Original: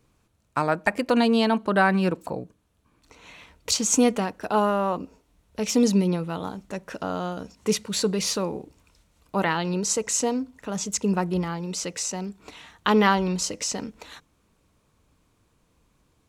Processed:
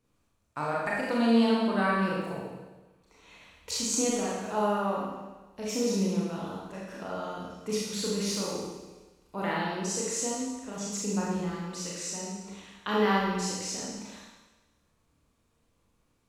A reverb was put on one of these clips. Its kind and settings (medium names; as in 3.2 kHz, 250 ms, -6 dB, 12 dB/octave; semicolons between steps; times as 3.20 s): Schroeder reverb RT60 1.2 s, combs from 27 ms, DRR -5.5 dB; trim -12 dB